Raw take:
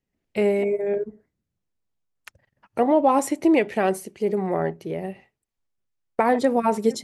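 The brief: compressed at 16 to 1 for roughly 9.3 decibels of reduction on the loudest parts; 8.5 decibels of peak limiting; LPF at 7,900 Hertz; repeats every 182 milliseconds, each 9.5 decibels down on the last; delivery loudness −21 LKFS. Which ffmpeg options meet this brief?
ffmpeg -i in.wav -af "lowpass=7900,acompressor=threshold=-23dB:ratio=16,alimiter=limit=-20dB:level=0:latency=1,aecho=1:1:182|364|546|728:0.335|0.111|0.0365|0.012,volume=9.5dB" out.wav

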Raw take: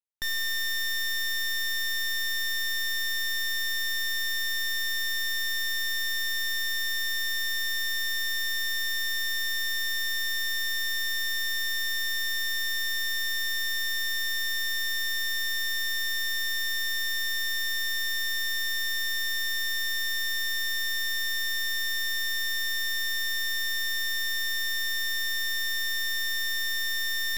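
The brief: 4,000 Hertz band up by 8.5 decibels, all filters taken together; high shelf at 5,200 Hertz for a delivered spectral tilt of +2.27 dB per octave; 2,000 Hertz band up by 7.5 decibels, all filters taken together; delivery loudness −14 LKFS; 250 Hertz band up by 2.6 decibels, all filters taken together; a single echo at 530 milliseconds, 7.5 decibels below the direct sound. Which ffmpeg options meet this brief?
ffmpeg -i in.wav -af "equalizer=frequency=250:width_type=o:gain=4.5,equalizer=frequency=2000:width_type=o:gain=6.5,equalizer=frequency=4000:width_type=o:gain=6,highshelf=frequency=5200:gain=5.5,aecho=1:1:530:0.422,volume=6dB" out.wav

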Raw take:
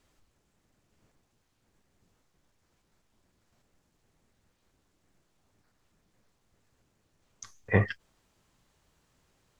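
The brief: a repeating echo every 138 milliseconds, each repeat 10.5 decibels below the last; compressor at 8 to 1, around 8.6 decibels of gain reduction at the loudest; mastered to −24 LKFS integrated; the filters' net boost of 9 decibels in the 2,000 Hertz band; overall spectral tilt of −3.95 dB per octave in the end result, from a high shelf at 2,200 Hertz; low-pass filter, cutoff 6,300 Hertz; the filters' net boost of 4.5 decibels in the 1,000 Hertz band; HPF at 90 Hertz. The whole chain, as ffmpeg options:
ffmpeg -i in.wav -af "highpass=90,lowpass=6300,equalizer=frequency=1000:width_type=o:gain=3,equalizer=frequency=2000:width_type=o:gain=5,highshelf=frequency=2200:gain=8.5,acompressor=threshold=-23dB:ratio=8,aecho=1:1:138|276|414:0.299|0.0896|0.0269,volume=8.5dB" out.wav

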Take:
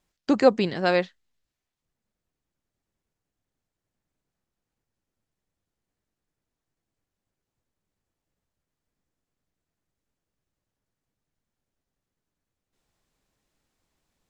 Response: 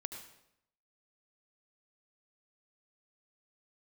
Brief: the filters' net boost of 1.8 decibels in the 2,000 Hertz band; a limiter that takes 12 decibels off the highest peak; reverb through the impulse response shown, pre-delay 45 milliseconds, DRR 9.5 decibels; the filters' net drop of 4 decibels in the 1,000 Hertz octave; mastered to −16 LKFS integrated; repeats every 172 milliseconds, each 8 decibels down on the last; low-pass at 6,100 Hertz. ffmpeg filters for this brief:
-filter_complex "[0:a]lowpass=6100,equalizer=frequency=1000:width_type=o:gain=-7.5,equalizer=frequency=2000:width_type=o:gain=5,alimiter=limit=-18.5dB:level=0:latency=1,aecho=1:1:172|344|516|688|860:0.398|0.159|0.0637|0.0255|0.0102,asplit=2[link_01][link_02];[1:a]atrim=start_sample=2205,adelay=45[link_03];[link_02][link_03]afir=irnorm=-1:irlink=0,volume=-8dB[link_04];[link_01][link_04]amix=inputs=2:normalize=0,volume=13.5dB"

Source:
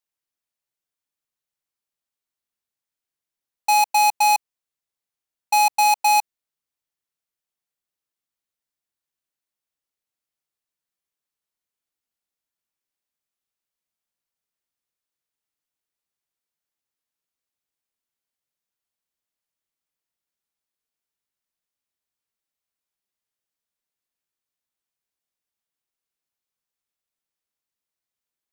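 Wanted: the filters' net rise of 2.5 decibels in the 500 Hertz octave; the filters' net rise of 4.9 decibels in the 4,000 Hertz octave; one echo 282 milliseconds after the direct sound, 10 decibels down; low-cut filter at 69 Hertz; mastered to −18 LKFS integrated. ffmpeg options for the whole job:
ffmpeg -i in.wav -af "highpass=69,equalizer=frequency=500:width_type=o:gain=4,equalizer=frequency=4000:width_type=o:gain=5,aecho=1:1:282:0.316,volume=-0.5dB" out.wav

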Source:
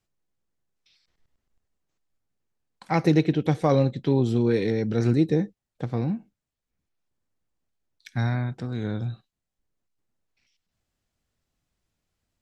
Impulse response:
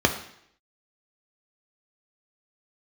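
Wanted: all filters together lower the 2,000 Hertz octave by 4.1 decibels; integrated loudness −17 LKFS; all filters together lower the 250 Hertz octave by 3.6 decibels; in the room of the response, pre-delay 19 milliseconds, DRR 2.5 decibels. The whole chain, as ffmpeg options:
-filter_complex "[0:a]equalizer=frequency=250:width_type=o:gain=-5,equalizer=frequency=2000:width_type=o:gain=-5,asplit=2[link_01][link_02];[1:a]atrim=start_sample=2205,adelay=19[link_03];[link_02][link_03]afir=irnorm=-1:irlink=0,volume=-18.5dB[link_04];[link_01][link_04]amix=inputs=2:normalize=0,volume=6dB"

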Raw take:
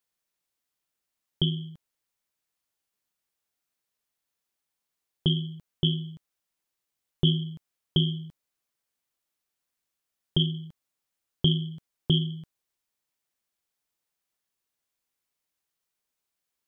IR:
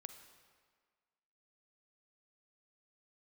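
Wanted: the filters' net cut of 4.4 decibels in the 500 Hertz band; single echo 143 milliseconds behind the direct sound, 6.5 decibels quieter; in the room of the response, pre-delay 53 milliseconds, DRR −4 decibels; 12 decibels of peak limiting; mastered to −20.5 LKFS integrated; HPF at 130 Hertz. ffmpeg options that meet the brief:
-filter_complex "[0:a]highpass=130,equalizer=frequency=500:width_type=o:gain=-7.5,alimiter=limit=-23.5dB:level=0:latency=1,aecho=1:1:143:0.473,asplit=2[link_01][link_02];[1:a]atrim=start_sample=2205,adelay=53[link_03];[link_02][link_03]afir=irnorm=-1:irlink=0,volume=9dB[link_04];[link_01][link_04]amix=inputs=2:normalize=0,volume=14.5dB"

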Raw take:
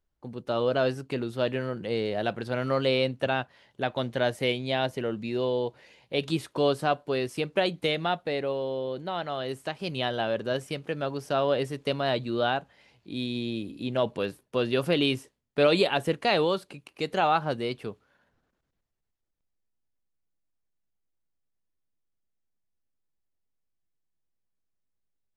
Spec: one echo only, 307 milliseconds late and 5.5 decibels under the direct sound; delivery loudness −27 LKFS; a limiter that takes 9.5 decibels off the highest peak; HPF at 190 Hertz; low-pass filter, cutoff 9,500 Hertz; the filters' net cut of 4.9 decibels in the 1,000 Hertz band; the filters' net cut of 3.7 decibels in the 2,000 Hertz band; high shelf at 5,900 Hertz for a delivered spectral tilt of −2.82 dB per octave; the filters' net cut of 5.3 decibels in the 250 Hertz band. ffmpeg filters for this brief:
ffmpeg -i in.wav -af "highpass=190,lowpass=9500,equalizer=frequency=250:width_type=o:gain=-5,equalizer=frequency=1000:width_type=o:gain=-6.5,equalizer=frequency=2000:width_type=o:gain=-3.5,highshelf=frequency=5900:gain=4,alimiter=limit=-20.5dB:level=0:latency=1,aecho=1:1:307:0.531,volume=6dB" out.wav

